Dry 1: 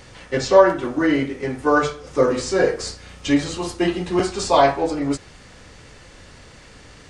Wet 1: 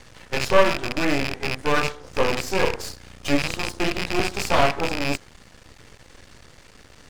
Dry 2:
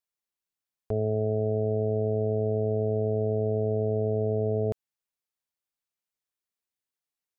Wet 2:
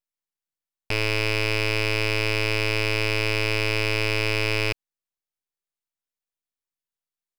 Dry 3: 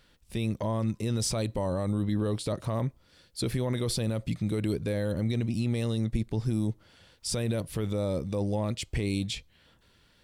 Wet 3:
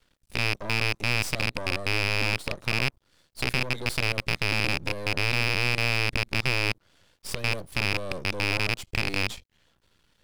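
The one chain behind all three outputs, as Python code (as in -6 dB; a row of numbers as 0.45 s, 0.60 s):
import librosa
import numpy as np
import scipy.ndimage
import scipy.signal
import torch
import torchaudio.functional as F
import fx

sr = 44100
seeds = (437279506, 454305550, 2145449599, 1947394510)

y = fx.rattle_buzz(x, sr, strikes_db=-31.0, level_db=-9.0)
y = np.maximum(y, 0.0)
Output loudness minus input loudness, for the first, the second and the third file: -3.5 LU, +4.0 LU, +4.0 LU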